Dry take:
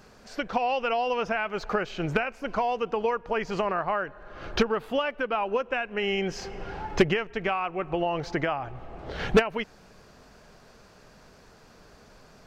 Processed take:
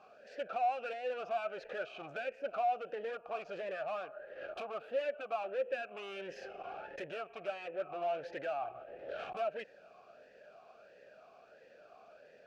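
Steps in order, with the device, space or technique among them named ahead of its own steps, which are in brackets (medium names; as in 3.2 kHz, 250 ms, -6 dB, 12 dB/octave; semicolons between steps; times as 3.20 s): talk box (valve stage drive 34 dB, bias 0.4; talking filter a-e 1.5 Hz); trim +7.5 dB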